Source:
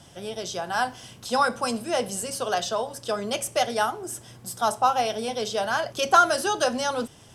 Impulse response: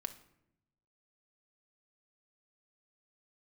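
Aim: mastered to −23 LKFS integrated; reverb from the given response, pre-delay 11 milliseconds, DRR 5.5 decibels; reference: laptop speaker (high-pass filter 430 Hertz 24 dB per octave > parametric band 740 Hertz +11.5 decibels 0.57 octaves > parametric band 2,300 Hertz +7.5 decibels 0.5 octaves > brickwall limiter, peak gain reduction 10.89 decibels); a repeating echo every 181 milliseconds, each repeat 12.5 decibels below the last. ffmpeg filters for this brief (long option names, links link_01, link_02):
-filter_complex "[0:a]aecho=1:1:181|362|543:0.237|0.0569|0.0137,asplit=2[link_01][link_02];[1:a]atrim=start_sample=2205,adelay=11[link_03];[link_02][link_03]afir=irnorm=-1:irlink=0,volume=-4dB[link_04];[link_01][link_04]amix=inputs=2:normalize=0,highpass=frequency=430:width=0.5412,highpass=frequency=430:width=1.3066,equalizer=frequency=740:width_type=o:width=0.57:gain=11.5,equalizer=frequency=2300:width_type=o:width=0.5:gain=7.5,volume=-0.5dB,alimiter=limit=-11.5dB:level=0:latency=1"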